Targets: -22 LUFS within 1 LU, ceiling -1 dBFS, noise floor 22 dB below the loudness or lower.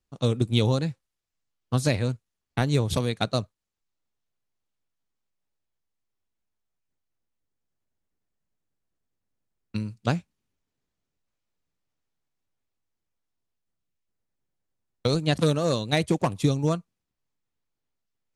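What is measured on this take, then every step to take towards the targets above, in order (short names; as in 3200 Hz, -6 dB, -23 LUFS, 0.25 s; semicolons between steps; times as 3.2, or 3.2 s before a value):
loudness -26.0 LUFS; peak -8.5 dBFS; loudness target -22.0 LUFS
-> gain +4 dB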